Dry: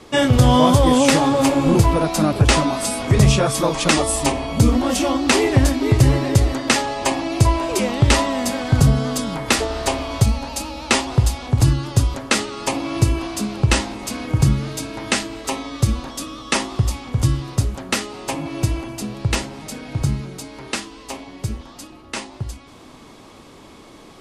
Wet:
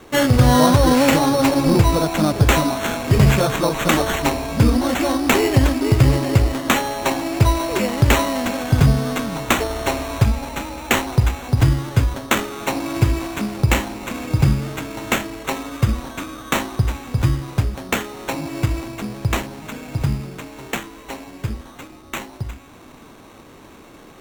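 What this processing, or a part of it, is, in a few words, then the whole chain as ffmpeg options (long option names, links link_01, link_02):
crushed at another speed: -af "asetrate=22050,aresample=44100,acrusher=samples=18:mix=1:aa=0.000001,asetrate=88200,aresample=44100"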